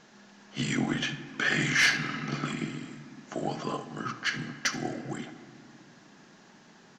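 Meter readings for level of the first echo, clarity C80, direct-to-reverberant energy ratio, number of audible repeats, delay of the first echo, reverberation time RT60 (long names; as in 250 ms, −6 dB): −17.0 dB, 13.0 dB, 9.0 dB, 1, 75 ms, 2.4 s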